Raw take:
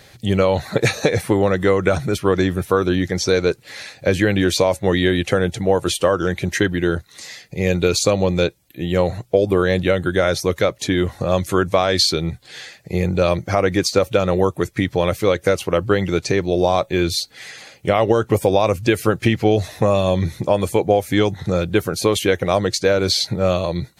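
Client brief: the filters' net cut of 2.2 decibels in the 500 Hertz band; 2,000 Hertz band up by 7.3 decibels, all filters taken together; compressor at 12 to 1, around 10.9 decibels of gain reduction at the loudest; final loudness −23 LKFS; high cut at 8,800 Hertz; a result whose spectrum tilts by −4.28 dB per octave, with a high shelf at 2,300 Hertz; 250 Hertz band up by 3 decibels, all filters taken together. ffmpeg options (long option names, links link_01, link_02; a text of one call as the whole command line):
ffmpeg -i in.wav -af "lowpass=8800,equalizer=frequency=250:width_type=o:gain=6,equalizer=frequency=500:width_type=o:gain=-5,equalizer=frequency=2000:width_type=o:gain=6.5,highshelf=frequency=2300:gain=5.5,acompressor=threshold=-20dB:ratio=12,volume=2.5dB" out.wav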